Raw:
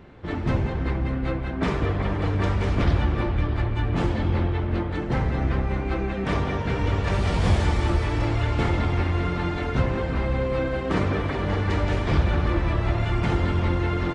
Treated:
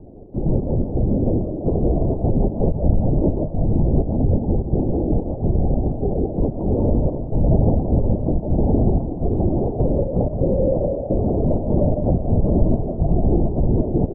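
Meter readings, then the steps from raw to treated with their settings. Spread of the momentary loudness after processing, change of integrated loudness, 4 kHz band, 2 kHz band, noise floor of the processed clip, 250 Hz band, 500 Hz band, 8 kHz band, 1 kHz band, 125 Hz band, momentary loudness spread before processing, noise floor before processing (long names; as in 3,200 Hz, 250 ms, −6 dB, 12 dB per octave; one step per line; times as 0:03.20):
4 LU, +4.0 dB, below −40 dB, below −40 dB, −28 dBFS, +6.5 dB, +6.5 dB, can't be measured, −3.5 dB, +3.5 dB, 4 LU, −28 dBFS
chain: Butterworth low-pass 720 Hz 48 dB per octave
in parallel at +2 dB: brickwall limiter −18 dBFS, peak gain reduction 7.5 dB
on the sum: gate pattern "xx.xx.x.xxxx..xx" 127 BPM −24 dB
on a send: echo with shifted repeats 155 ms, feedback 32%, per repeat +62 Hz, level −11 dB
on the sum: comb and all-pass reverb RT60 0.69 s, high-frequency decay 0.9×, pre-delay 115 ms, DRR 5.5 dB
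linear-prediction vocoder at 8 kHz whisper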